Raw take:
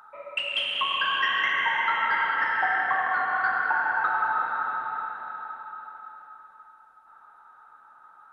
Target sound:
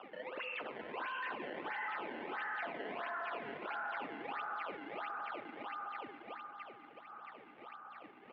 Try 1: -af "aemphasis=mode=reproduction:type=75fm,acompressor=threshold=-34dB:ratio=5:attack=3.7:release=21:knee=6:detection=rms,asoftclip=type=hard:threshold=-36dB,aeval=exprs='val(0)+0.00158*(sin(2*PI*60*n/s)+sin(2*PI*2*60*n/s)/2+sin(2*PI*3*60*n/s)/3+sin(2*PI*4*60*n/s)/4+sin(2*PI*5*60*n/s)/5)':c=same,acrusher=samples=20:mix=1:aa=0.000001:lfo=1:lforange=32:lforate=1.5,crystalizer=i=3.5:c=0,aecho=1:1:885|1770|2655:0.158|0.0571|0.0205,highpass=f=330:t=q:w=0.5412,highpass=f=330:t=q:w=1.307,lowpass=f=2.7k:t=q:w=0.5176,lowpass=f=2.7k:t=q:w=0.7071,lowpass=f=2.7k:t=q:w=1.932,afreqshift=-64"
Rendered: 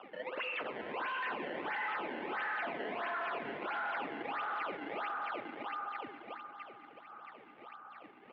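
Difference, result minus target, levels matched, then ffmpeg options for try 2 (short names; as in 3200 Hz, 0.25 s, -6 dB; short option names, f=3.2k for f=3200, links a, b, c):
compressor: peak gain reduction -7 dB
-af "aemphasis=mode=reproduction:type=75fm,acompressor=threshold=-42.5dB:ratio=5:attack=3.7:release=21:knee=6:detection=rms,asoftclip=type=hard:threshold=-36dB,aeval=exprs='val(0)+0.00158*(sin(2*PI*60*n/s)+sin(2*PI*2*60*n/s)/2+sin(2*PI*3*60*n/s)/3+sin(2*PI*4*60*n/s)/4+sin(2*PI*5*60*n/s)/5)':c=same,acrusher=samples=20:mix=1:aa=0.000001:lfo=1:lforange=32:lforate=1.5,crystalizer=i=3.5:c=0,aecho=1:1:885|1770|2655:0.158|0.0571|0.0205,highpass=f=330:t=q:w=0.5412,highpass=f=330:t=q:w=1.307,lowpass=f=2.7k:t=q:w=0.5176,lowpass=f=2.7k:t=q:w=0.7071,lowpass=f=2.7k:t=q:w=1.932,afreqshift=-64"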